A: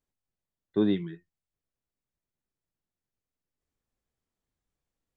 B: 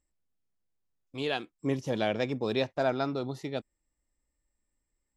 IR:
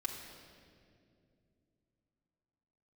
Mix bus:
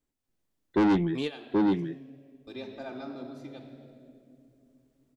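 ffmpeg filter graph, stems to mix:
-filter_complex "[0:a]dynaudnorm=f=170:g=3:m=6.5dB,equalizer=f=290:t=o:w=0.77:g=8.5,volume=0.5dB,asplit=3[a][b][c];[b]volume=-6dB[d];[1:a]equalizer=f=240:w=6.3:g=10,volume=1dB,asplit=3[e][f][g];[e]atrim=end=1.82,asetpts=PTS-STARTPTS,afade=t=out:st=1.816:d=0.004:c=hsin[h];[f]atrim=start=1.82:end=2.47,asetpts=PTS-STARTPTS,volume=0[i];[g]atrim=start=2.47,asetpts=PTS-STARTPTS,afade=t=in:d=0.004:c=hsin[j];[h][i][j]concat=n=3:v=0:a=1,asplit=2[k][l];[l]volume=-13.5dB[m];[c]apad=whole_len=227743[n];[k][n]sidechaingate=range=-33dB:threshold=-44dB:ratio=16:detection=peak[o];[2:a]atrim=start_sample=2205[p];[m][p]afir=irnorm=-1:irlink=0[q];[d]aecho=0:1:778:1[r];[a][o][q][r]amix=inputs=4:normalize=0,asoftclip=type=tanh:threshold=-19.5dB"

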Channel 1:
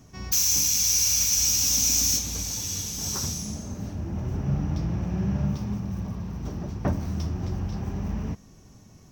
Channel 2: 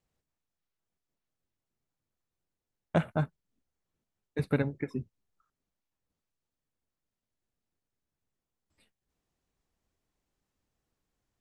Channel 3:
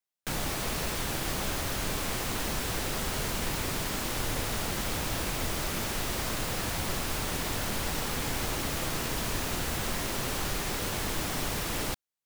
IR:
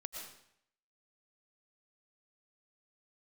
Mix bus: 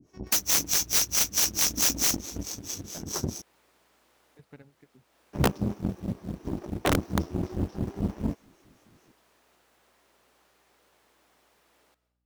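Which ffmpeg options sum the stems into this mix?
-filter_complex "[0:a]equalizer=f=330:t=o:w=1.1:g=14.5,acrossover=split=400[a][b];[a]aeval=exprs='val(0)*(1-1/2+1/2*cos(2*PI*4.6*n/s))':c=same[c];[b]aeval=exprs='val(0)*(1-1/2-1/2*cos(2*PI*4.6*n/s))':c=same[d];[c][d]amix=inputs=2:normalize=0,volume=3dB,asplit=3[e][f][g];[e]atrim=end=3.42,asetpts=PTS-STARTPTS,afade=t=out:st=3.416:d=0.004:c=hsin[h];[f]atrim=start=3.42:end=5.33,asetpts=PTS-STARTPTS,volume=0[i];[g]atrim=start=5.33,asetpts=PTS-STARTPTS,afade=t=in:d=0.004:c=hsin[j];[h][i][j]concat=n=3:v=0:a=1[k];[1:a]volume=-12dB,asplit=2[l][m];[2:a]highpass=390,highshelf=f=2.5k:g=-6.5,aeval=exprs='val(0)+0.00282*(sin(2*PI*60*n/s)+sin(2*PI*2*60*n/s)/2+sin(2*PI*3*60*n/s)/3+sin(2*PI*4*60*n/s)/4+sin(2*PI*5*60*n/s)/5)':c=same,volume=-17.5dB,asplit=2[n][o];[o]volume=-8dB[p];[m]apad=whole_len=540586[q];[n][q]sidechaincompress=threshold=-51dB:ratio=4:attack=41:release=307[r];[3:a]atrim=start_sample=2205[s];[p][s]afir=irnorm=-1:irlink=0[t];[k][l][r][t]amix=inputs=4:normalize=0,aeval=exprs='(mod(5.01*val(0)+1,2)-1)/5.01':c=same,aeval=exprs='0.211*(cos(1*acos(clip(val(0)/0.211,-1,1)))-cos(1*PI/2))+0.0237*(cos(3*acos(clip(val(0)/0.211,-1,1)))-cos(3*PI/2))+0.0133*(cos(7*acos(clip(val(0)/0.211,-1,1)))-cos(7*PI/2))':c=same"

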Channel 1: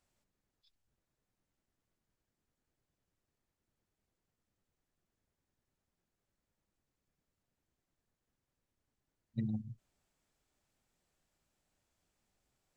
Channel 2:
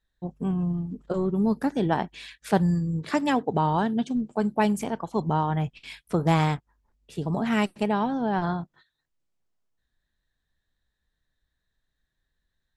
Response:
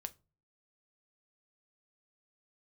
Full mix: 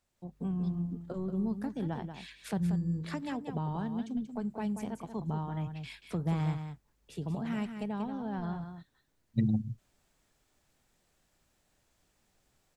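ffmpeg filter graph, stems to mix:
-filter_complex "[0:a]volume=0dB[a];[1:a]acrossover=split=200[b][c];[c]acompressor=threshold=-38dB:ratio=2.5[d];[b][d]amix=inputs=2:normalize=0,volume=-13.5dB,asplit=2[e][f];[f]volume=-8.5dB,aecho=0:1:184:1[g];[a][e][g]amix=inputs=3:normalize=0,dynaudnorm=f=110:g=5:m=8.5dB"

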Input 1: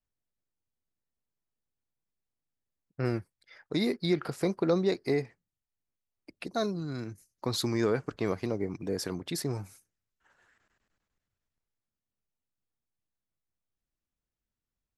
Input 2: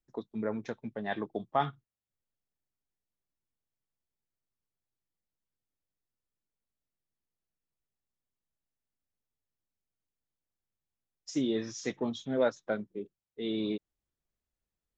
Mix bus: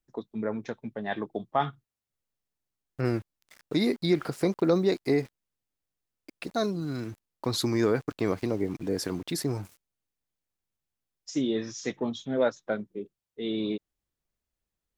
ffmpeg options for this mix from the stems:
-filter_complex "[0:a]adynamicequalizer=threshold=0.00891:dfrequency=290:dqfactor=3.4:tfrequency=290:tqfactor=3.4:attack=5:release=100:ratio=0.375:range=2:mode=boostabove:tftype=bell,aeval=exprs='val(0)*gte(abs(val(0)),0.00355)':c=same,volume=2dB[a];[1:a]volume=2.5dB[b];[a][b]amix=inputs=2:normalize=0"

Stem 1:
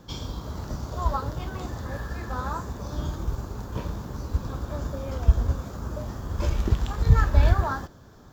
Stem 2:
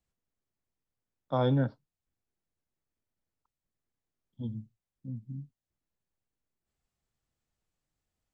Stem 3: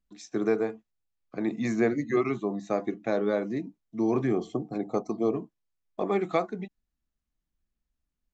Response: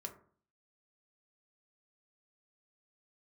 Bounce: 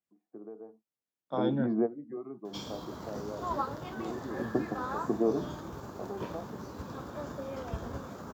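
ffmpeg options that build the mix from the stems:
-filter_complex "[0:a]adelay=2450,volume=-9dB[a];[1:a]volume=-7dB,asplit=2[b][c];[2:a]acompressor=threshold=-29dB:ratio=2.5,lowpass=f=1k:w=0.5412,lowpass=f=1k:w=1.3066,volume=-1.5dB[d];[c]apad=whole_len=367353[e];[d][e]sidechaingate=range=-13dB:threshold=-60dB:ratio=16:detection=peak[f];[a][b][f]amix=inputs=3:normalize=0,dynaudnorm=f=570:g=5:m=6dB,highpass=190,adynamicequalizer=threshold=0.00158:dfrequency=3300:dqfactor=0.7:tfrequency=3300:tqfactor=0.7:attack=5:release=100:ratio=0.375:range=2.5:mode=cutabove:tftype=highshelf"

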